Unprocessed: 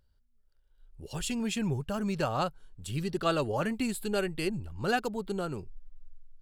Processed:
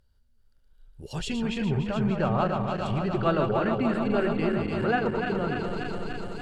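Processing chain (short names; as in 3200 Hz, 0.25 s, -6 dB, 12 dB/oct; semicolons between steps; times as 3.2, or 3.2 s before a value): regenerating reverse delay 0.146 s, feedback 85%, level -5.5 dB; treble ducked by the level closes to 2100 Hz, closed at -25.5 dBFS; gain +3 dB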